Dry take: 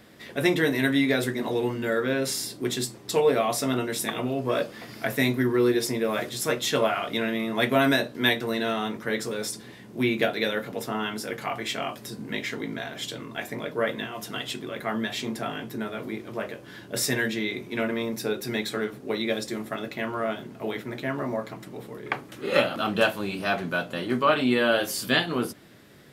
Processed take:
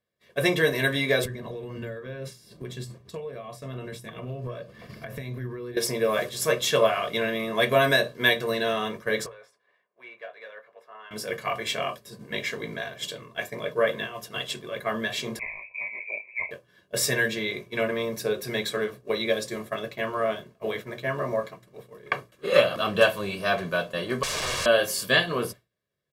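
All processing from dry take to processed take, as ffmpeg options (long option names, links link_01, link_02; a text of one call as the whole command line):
ffmpeg -i in.wav -filter_complex "[0:a]asettb=1/sr,asplit=3[link_01][link_02][link_03];[link_01]atrim=end=1.254[link_04];[link_02]atrim=start=1.25:end=5.77,asetpts=PTS-STARTPTS,afade=type=in:duration=0.004:curve=qsin,afade=type=out:start_time=4.516:duration=0.004:curve=qsin,acompressor=threshold=-33dB:ratio=16:attack=3.2:release=140:knee=1:detection=peak,bass=frequency=250:gain=11,treble=frequency=4000:gain=-6[link_05];[link_03]atrim=start=5.766[link_06];[link_04][link_05]acrossfade=duration=0.004:curve1=hsin:curve2=qsin[link_07];[link_07][link_06]acrossfade=duration=0.004:curve1=qsin:curve2=hsin,asettb=1/sr,asplit=3[link_08][link_09][link_10];[link_08]atrim=end=9.264[link_11];[link_09]atrim=start=9.26:end=11.11,asetpts=PTS-STARTPTS,afade=type=in:duration=0.004:curve=qsin,afade=type=out:start_time=1.846:duration=0.004:curve=qsin,asplit=2[link_12][link_13];[link_13]highpass=frequency=720:poles=1,volume=12dB,asoftclip=type=tanh:threshold=-9.5dB[link_14];[link_12][link_14]amix=inputs=2:normalize=0,lowpass=frequency=5300:poles=1,volume=-6dB,acrossover=split=480 2300:gain=0.126 1 0.141[link_15][link_16][link_17];[link_15][link_16][link_17]amix=inputs=3:normalize=0,acompressor=threshold=-40dB:ratio=2.5:attack=3.2:release=140:knee=1:detection=peak[link_18];[link_10]atrim=start=11.106[link_19];[link_11][link_18]acrossfade=duration=0.004:curve1=hsin:curve2=qsin[link_20];[link_20][link_19]acrossfade=duration=0.004:curve1=qsin:curve2=hsin,asettb=1/sr,asplit=3[link_21][link_22][link_23];[link_21]atrim=end=15.394[link_24];[link_22]atrim=start=15.39:end=16.51,asetpts=PTS-STARTPTS,afade=type=in:duration=0.004:curve=qsin,afade=type=out:start_time=1.116:duration=0.004:curve=qsin,lowpass=frequency=2300:width_type=q:width=0.5098,lowpass=frequency=2300:width_type=q:width=0.6013,lowpass=frequency=2300:width_type=q:width=0.9,lowpass=frequency=2300:width_type=q:width=2.563,afreqshift=-2700,asuperstop=centerf=1400:order=8:qfactor=1.5[link_25];[link_23]atrim=start=16.506[link_26];[link_24][link_25]acrossfade=duration=0.004:curve1=hsin:curve2=qsin[link_27];[link_27][link_26]acrossfade=duration=0.004:curve1=qsin:curve2=hsin,asettb=1/sr,asplit=3[link_28][link_29][link_30];[link_28]atrim=end=24.234[link_31];[link_29]atrim=start=24.23:end=24.66,asetpts=PTS-STARTPTS,afade=type=in:duration=0.004:curve=qsin,afade=type=out:start_time=0.426:duration=0.004:curve=qsin,aeval=exprs='(mod(16.8*val(0)+1,2)-1)/16.8':channel_layout=same,lowpass=8400[link_32];[link_30]atrim=start=24.656[link_33];[link_31][link_32]acrossfade=duration=0.004:curve1=hsin:curve2=qsin[link_34];[link_34][link_33]acrossfade=duration=0.004:curve1=qsin:curve2=hsin,agate=range=-33dB:threshold=-31dB:ratio=3:detection=peak,bandreject=frequency=60:width_type=h:width=6,bandreject=frequency=120:width_type=h:width=6,aecho=1:1:1.8:0.66" out.wav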